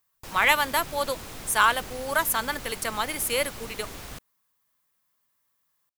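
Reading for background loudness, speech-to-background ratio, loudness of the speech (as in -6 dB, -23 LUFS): -40.0 LUFS, 15.0 dB, -25.0 LUFS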